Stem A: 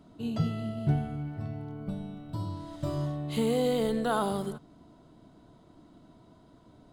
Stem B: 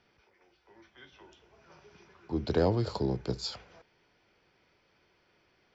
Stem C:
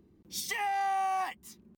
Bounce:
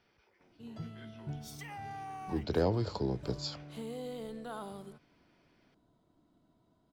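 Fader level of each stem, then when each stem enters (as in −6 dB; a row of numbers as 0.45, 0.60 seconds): −14.5, −3.0, −14.0 decibels; 0.40, 0.00, 1.10 seconds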